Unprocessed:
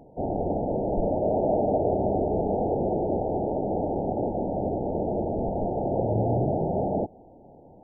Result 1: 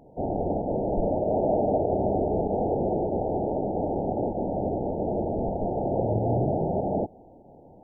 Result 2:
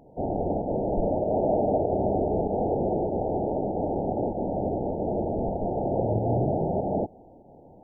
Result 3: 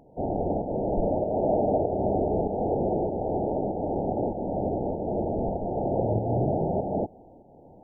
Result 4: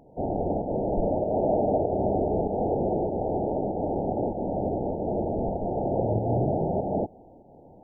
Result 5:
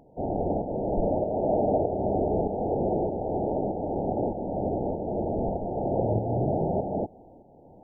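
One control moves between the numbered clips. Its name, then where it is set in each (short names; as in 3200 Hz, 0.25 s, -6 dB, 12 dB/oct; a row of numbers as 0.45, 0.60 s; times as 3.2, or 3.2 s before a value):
pump, release: 83, 122, 316, 202, 533 ms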